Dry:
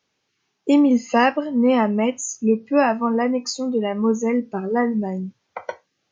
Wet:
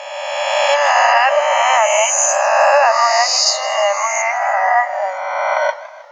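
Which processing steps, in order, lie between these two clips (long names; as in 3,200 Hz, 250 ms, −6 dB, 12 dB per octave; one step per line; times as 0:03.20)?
peak hold with a rise ahead of every peak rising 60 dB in 2.03 s
linear-phase brick-wall high-pass 550 Hz
in parallel at −1 dB: downward compressor, threshold −26 dBFS, peak gain reduction 14.5 dB
on the sum: boost into a limiter +7.5 dB
feedback echo with a swinging delay time 158 ms, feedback 59%, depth 141 cents, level −17 dB
level −1.5 dB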